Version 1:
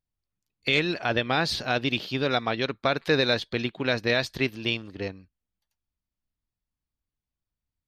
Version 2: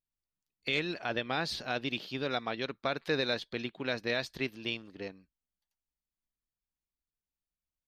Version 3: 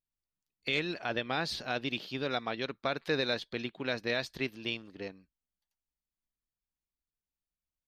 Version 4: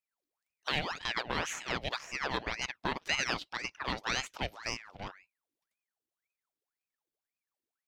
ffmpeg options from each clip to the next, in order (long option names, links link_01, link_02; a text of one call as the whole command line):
ffmpeg -i in.wav -af "equalizer=frequency=94:width=2.4:gain=-9.5,volume=-8dB" out.wav
ffmpeg -i in.wav -af anull out.wav
ffmpeg -i in.wav -af "aeval=exprs='if(lt(val(0),0),0.708*val(0),val(0))':channel_layout=same,aeval=exprs='val(0)*sin(2*PI*1400*n/s+1400*0.8/1.9*sin(2*PI*1.9*n/s))':channel_layout=same,volume=2.5dB" out.wav